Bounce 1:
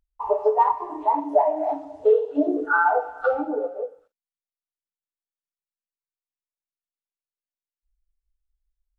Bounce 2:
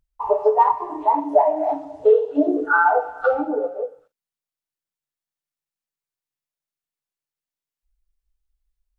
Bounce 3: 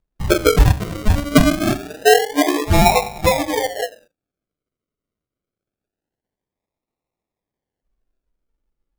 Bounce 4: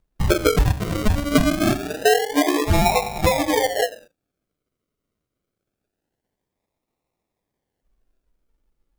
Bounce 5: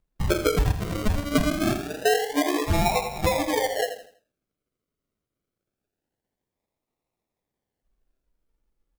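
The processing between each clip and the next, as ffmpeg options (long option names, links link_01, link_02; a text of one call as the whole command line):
ffmpeg -i in.wav -af "equalizer=frequency=140:width=7.4:gain=11.5,volume=3dB" out.wav
ffmpeg -i in.wav -af "lowshelf=frequency=410:gain=-6.5,acrusher=samples=40:mix=1:aa=0.000001:lfo=1:lforange=24:lforate=0.25,volume=5.5dB" out.wav
ffmpeg -i in.wav -af "acompressor=threshold=-22dB:ratio=3,volume=5dB" out.wav
ffmpeg -i in.wav -af "aecho=1:1:82|164|246|328:0.282|0.093|0.0307|0.0101,volume=-5dB" out.wav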